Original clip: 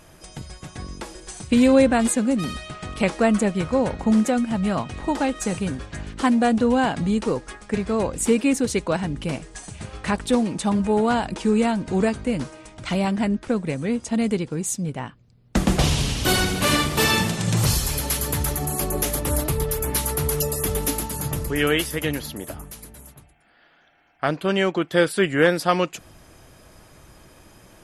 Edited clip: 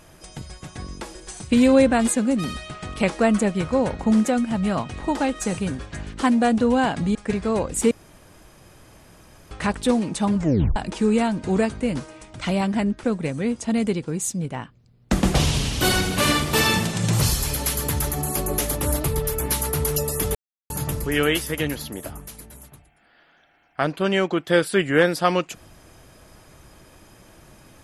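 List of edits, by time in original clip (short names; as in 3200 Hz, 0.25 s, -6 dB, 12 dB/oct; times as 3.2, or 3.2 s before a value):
7.15–7.59 cut
8.35–9.95 room tone
10.81 tape stop 0.39 s
20.79–21.14 mute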